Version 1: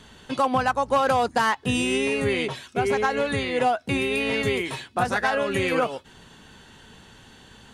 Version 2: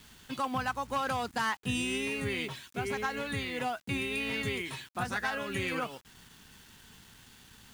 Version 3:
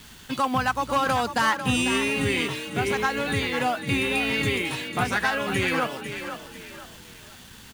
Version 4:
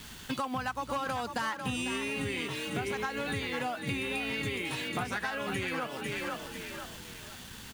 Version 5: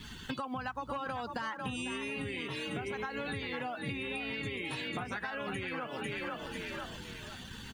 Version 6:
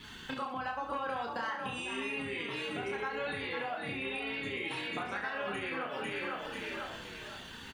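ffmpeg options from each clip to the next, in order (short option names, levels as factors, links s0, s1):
-af "acrusher=bits=7:mix=0:aa=0.000001,equalizer=f=550:t=o:w=1.4:g=-8.5,volume=0.473"
-filter_complex "[0:a]asplit=5[s0][s1][s2][s3][s4];[s1]adelay=497,afreqshift=34,volume=0.335[s5];[s2]adelay=994,afreqshift=68,volume=0.117[s6];[s3]adelay=1491,afreqshift=102,volume=0.0412[s7];[s4]adelay=1988,afreqshift=136,volume=0.0143[s8];[s0][s5][s6][s7][s8]amix=inputs=5:normalize=0,volume=2.66"
-af "acompressor=threshold=0.0282:ratio=6"
-af "acompressor=threshold=0.0141:ratio=5,afftdn=nr=16:nf=-51,volume=1.33"
-filter_complex "[0:a]bass=f=250:g=-9,treble=f=4000:g=-5,asplit=2[s0][s1];[s1]aecho=0:1:30|69|119.7|185.6|271.3:0.631|0.398|0.251|0.158|0.1[s2];[s0][s2]amix=inputs=2:normalize=0"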